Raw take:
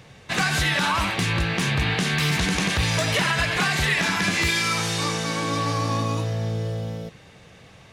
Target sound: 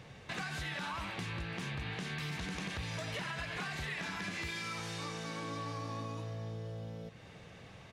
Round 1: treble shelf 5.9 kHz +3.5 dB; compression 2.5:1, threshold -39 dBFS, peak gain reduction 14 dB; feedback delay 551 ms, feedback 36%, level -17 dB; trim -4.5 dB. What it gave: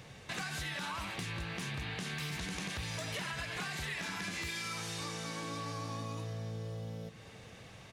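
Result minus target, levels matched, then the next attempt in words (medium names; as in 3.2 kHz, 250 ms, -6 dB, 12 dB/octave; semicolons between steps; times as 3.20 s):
echo 214 ms late; 8 kHz band +5.0 dB
treble shelf 5.9 kHz -7 dB; compression 2.5:1, threshold -39 dBFS, peak gain reduction 13.5 dB; feedback delay 337 ms, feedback 36%, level -17 dB; trim -4.5 dB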